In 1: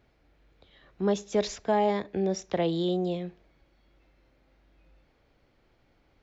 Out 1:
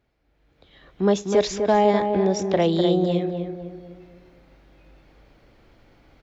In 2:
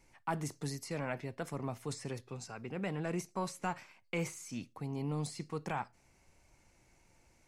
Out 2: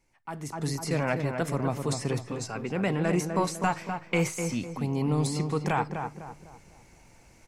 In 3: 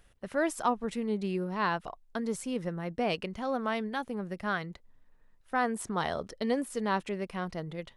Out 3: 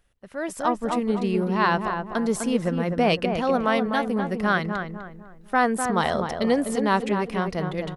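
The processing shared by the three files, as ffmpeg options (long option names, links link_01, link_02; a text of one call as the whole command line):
ffmpeg -i in.wav -filter_complex "[0:a]asplit=2[link_01][link_02];[link_02]adelay=251,lowpass=frequency=1500:poles=1,volume=-5.5dB,asplit=2[link_03][link_04];[link_04]adelay=251,lowpass=frequency=1500:poles=1,volume=0.41,asplit=2[link_05][link_06];[link_06]adelay=251,lowpass=frequency=1500:poles=1,volume=0.41,asplit=2[link_07][link_08];[link_08]adelay=251,lowpass=frequency=1500:poles=1,volume=0.41,asplit=2[link_09][link_10];[link_10]adelay=251,lowpass=frequency=1500:poles=1,volume=0.41[link_11];[link_01][link_03][link_05][link_07][link_09][link_11]amix=inputs=6:normalize=0,dynaudnorm=framelen=130:gausssize=9:maxgain=15.5dB,volume=-5.5dB" out.wav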